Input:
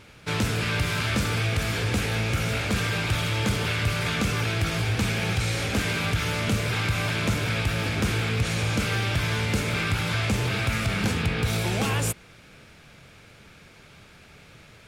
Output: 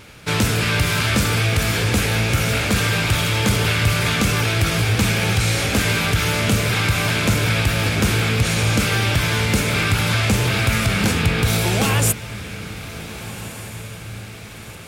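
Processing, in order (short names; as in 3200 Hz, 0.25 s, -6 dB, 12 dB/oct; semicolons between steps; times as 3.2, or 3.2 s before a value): high shelf 8600 Hz +8 dB; diffused feedback echo 1.517 s, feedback 52%, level -14.5 dB; gain +6.5 dB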